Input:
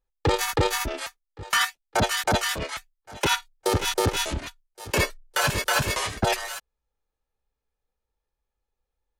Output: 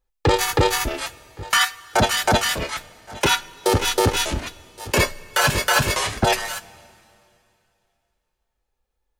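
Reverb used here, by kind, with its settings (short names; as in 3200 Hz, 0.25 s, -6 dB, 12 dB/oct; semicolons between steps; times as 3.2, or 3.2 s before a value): two-slope reverb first 0.21 s, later 2.7 s, from -18 dB, DRR 12 dB; gain +4.5 dB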